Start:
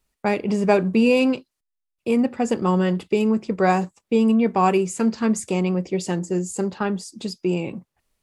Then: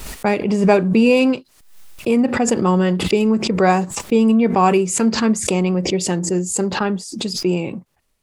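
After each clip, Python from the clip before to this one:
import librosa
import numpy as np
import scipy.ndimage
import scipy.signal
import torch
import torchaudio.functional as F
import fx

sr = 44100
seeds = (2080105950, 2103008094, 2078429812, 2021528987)

y = fx.pre_swell(x, sr, db_per_s=70.0)
y = y * librosa.db_to_amplitude(3.5)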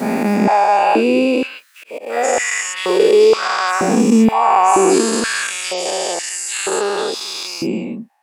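y = fx.spec_dilate(x, sr, span_ms=480)
y = fx.auto_swell(y, sr, attack_ms=201.0)
y = fx.filter_held_highpass(y, sr, hz=2.1, low_hz=230.0, high_hz=2200.0)
y = y * librosa.db_to_amplitude(-9.0)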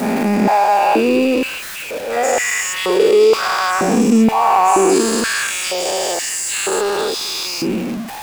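y = x + 0.5 * 10.0 ** (-22.0 / 20.0) * np.sign(x)
y = y * librosa.db_to_amplitude(-1.5)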